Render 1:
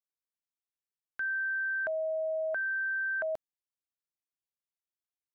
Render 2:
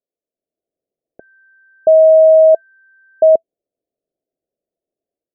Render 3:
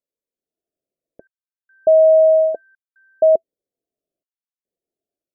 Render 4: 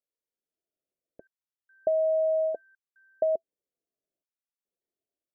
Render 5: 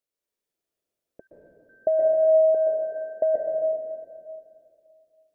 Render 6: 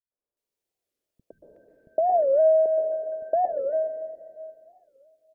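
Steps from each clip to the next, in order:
EQ curve 110 Hz 0 dB, 420 Hz +15 dB, 660 Hz +14 dB, 1100 Hz -30 dB; AGC gain up to 8 dB; gain +3 dB
step gate "xxxxxx..xxxxx." 71 bpm -60 dB; cascading phaser falling 0.91 Hz; gain -2 dB
compressor, threshold -17 dBFS, peak gain reduction 8 dB; gain -6.5 dB
reverb RT60 2.2 s, pre-delay 0.116 s, DRR -1.5 dB; gain +3 dB
three bands offset in time lows, mids, highs 0.11/0.37 s, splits 190/1300 Hz; record warp 45 rpm, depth 250 cents

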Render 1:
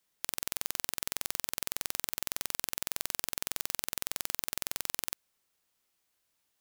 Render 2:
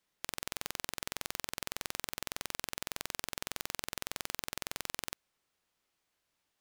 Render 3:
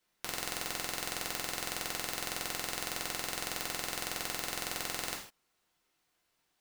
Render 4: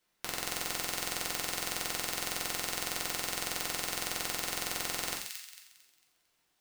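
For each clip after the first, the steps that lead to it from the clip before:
LPF 4000 Hz 6 dB/oct; gain +1 dB
non-linear reverb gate 0.18 s falling, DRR -2.5 dB
thin delay 0.225 s, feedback 35%, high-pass 2500 Hz, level -4 dB; gain +1 dB

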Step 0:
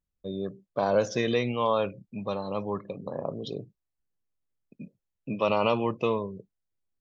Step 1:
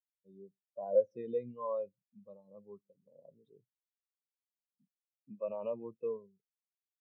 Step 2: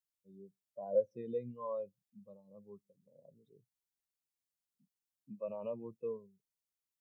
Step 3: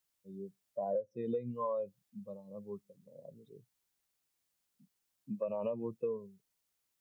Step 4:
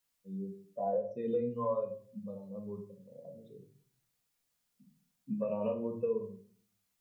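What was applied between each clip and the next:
spectral expander 2.5:1; gain -5.5 dB
tone controls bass +7 dB, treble +6 dB; gain -3.5 dB
compressor 16:1, threshold -41 dBFS, peak gain reduction 17.5 dB; gain +9.5 dB
reverb RT60 0.45 s, pre-delay 4 ms, DRR 1 dB

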